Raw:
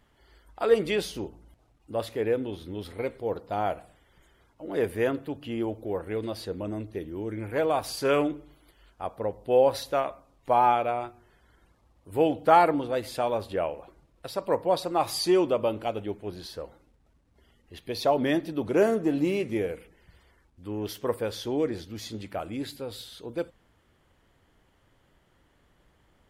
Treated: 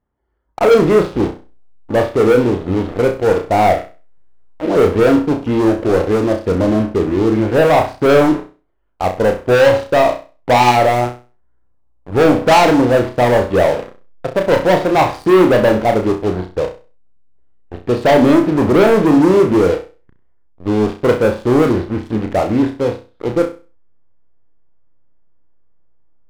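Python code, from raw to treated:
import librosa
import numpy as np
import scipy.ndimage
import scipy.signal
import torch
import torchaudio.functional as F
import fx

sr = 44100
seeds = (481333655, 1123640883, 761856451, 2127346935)

p1 = scipy.signal.sosfilt(scipy.signal.butter(2, 1200.0, 'lowpass', fs=sr, output='sos'), x)
p2 = fx.leveller(p1, sr, passes=5)
p3 = fx.backlash(p2, sr, play_db=-28.5)
p4 = p2 + (p3 * librosa.db_to_amplitude(-10.5))
p5 = fx.room_flutter(p4, sr, wall_m=5.6, rt60_s=0.33)
y = p5 * librosa.db_to_amplitude(-1.0)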